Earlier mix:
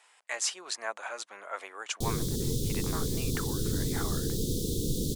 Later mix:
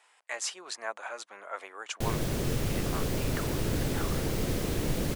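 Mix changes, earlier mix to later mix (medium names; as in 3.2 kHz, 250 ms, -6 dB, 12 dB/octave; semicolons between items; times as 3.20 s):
background: remove Chebyshev band-stop 470–3500 Hz, order 4; master: add peaking EQ 7.9 kHz -4 dB 2.8 oct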